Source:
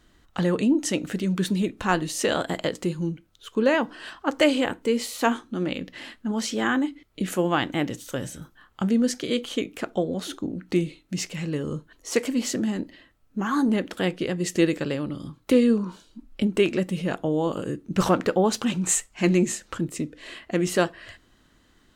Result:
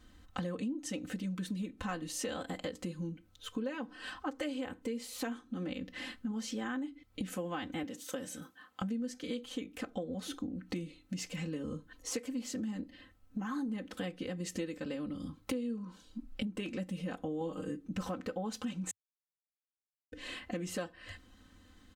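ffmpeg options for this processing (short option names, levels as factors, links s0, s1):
-filter_complex "[0:a]asettb=1/sr,asplit=3[s0][s1][s2];[s0]atrim=end=7.834[s3];[s1]atrim=start=7.83:end=8.82,asetpts=PTS-STARTPTS,afade=t=in:d=0.004:c=qsin,afade=t=out:st=0.986:d=0.004:c=qsin,highpass=230[s4];[s2]atrim=start=8.816[s5];[s3][s4]acrossfade=d=0.004:c1=hsin:c2=qsin[s6];[s6][s5]acrossfade=d=0.004:c1=qsin:c2=hsin,asettb=1/sr,asplit=3[s7][s8][s9];[s7]atrim=end=17.404[s10];[s8]atrim=start=17.4:end=17.88,asetpts=PTS-STARTPTS,afade=t=in:d=0.004:c=qsin,afade=t=out:st=0.476:d=0.004:c=qsin,aecho=1:1:6.4:0.78,atrim=end_sample=21168[s11];[s9]atrim=start=17.876[s12];[s10][s11]acrossfade=d=0.004:c1=hsin:c2=qsin[s13];[s13][s12]acrossfade=d=0.004:c1=qsin:c2=hsin,asplit=3[s14][s15][s16];[s14]atrim=end=18.91,asetpts=PTS-STARTPTS,afade=t=out:st=18.906:d=0.004:c=hsin[s17];[s15]atrim=start=18.91:end=20.12,asetpts=PTS-STARTPTS,volume=0[s18];[s16]atrim=start=20.12,asetpts=PTS-STARTPTS,afade=t=in:d=0.004:c=hsin[s19];[s17][s18][s19]concat=n=3:v=0:a=1,equalizer=f=100:t=o:w=0.97:g=13,aecho=1:1:3.9:0.97,acompressor=threshold=0.0282:ratio=5,volume=0.531"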